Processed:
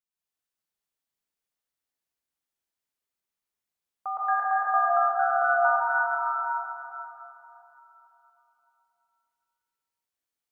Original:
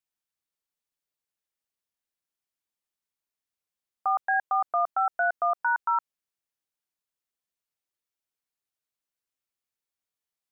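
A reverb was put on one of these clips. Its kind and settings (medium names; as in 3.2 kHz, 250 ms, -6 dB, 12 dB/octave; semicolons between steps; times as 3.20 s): plate-style reverb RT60 3.4 s, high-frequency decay 0.75×, pre-delay 110 ms, DRR -8 dB; trim -7 dB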